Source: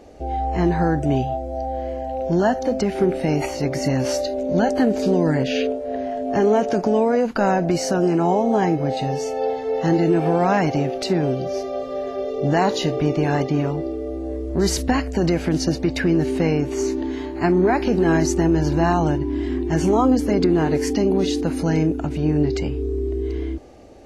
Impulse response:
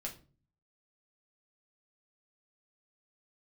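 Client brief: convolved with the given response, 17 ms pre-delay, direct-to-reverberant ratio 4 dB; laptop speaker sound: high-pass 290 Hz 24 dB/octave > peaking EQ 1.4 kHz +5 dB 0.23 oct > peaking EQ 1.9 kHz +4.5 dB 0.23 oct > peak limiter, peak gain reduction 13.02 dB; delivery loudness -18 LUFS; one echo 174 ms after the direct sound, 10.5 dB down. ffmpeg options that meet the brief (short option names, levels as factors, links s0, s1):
-filter_complex "[0:a]aecho=1:1:174:0.299,asplit=2[s0][s1];[1:a]atrim=start_sample=2205,adelay=17[s2];[s1][s2]afir=irnorm=-1:irlink=0,volume=0.708[s3];[s0][s3]amix=inputs=2:normalize=0,highpass=f=290:w=0.5412,highpass=f=290:w=1.3066,equalizer=f=1400:t=o:w=0.23:g=5,equalizer=f=1900:t=o:w=0.23:g=4.5,volume=2.37,alimiter=limit=0.335:level=0:latency=1"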